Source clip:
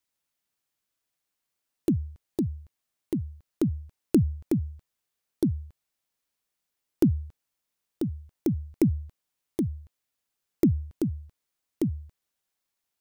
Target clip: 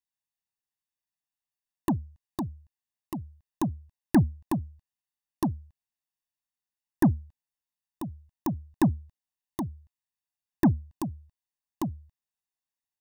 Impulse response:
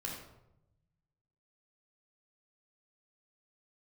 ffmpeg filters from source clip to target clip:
-af "aeval=exprs='0.335*(cos(1*acos(clip(val(0)/0.335,-1,1)))-cos(1*PI/2))+0.0376*(cos(7*acos(clip(val(0)/0.335,-1,1)))-cos(7*PI/2))':c=same,aecho=1:1:1.1:0.87,volume=-1dB"

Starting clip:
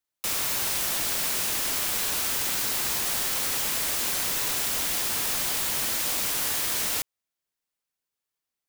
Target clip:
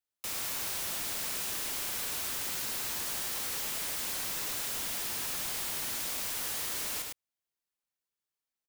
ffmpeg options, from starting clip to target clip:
-af "aecho=1:1:105:0.531,asoftclip=type=tanh:threshold=-23dB,volume=-6.5dB"

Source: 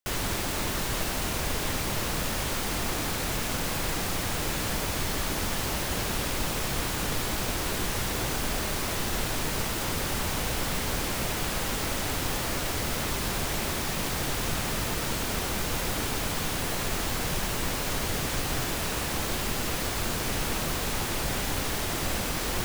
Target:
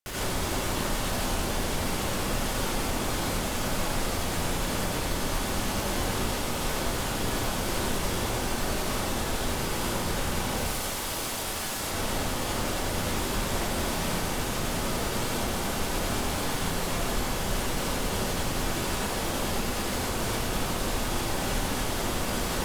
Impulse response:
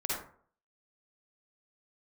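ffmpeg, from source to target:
-filter_complex "[0:a]alimiter=level_in=1.5dB:limit=-24dB:level=0:latency=1:release=185,volume=-1.5dB,asettb=1/sr,asplit=3[a][b][c];[a]atrim=end=10.574[d];[b]atrim=start=10.57:end=11.8,asetpts=PTS-STARTPTS,afade=t=in:d=0.004:c=qsin,afade=t=out:st=1.226:d=0.004:c=qsin,aeval=exprs='(mod(37.6*val(0)+1,2)-1)/37.6':c=same[e];[c]atrim=start=11.796[f];[d][e]acrossfade=d=0.004:c1=hsin:c2=qsin[g];[g][f]acrossfade=d=0.004:c1=qsin:c2=hsin[h];[1:a]atrim=start_sample=2205,asetrate=27342,aresample=44100[i];[h][i]afir=irnorm=-1:irlink=0,volume=-1.5dB"

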